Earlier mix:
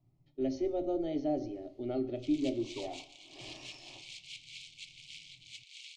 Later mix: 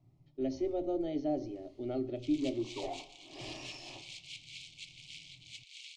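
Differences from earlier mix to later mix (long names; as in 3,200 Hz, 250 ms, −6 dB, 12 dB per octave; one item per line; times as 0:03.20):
speech: send −7.5 dB
first sound +5.0 dB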